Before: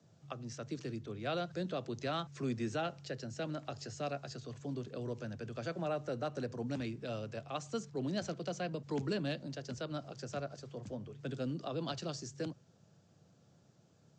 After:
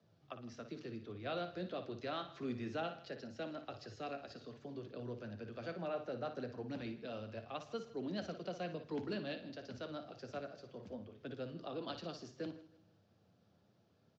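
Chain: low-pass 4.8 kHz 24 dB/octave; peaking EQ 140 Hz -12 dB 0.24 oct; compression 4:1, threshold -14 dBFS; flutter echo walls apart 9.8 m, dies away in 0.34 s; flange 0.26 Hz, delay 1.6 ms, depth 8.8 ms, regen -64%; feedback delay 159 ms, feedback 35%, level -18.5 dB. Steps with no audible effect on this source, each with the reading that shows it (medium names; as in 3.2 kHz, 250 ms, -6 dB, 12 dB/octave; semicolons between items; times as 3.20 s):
compression, threshold -14 dBFS: peak at its input -24.0 dBFS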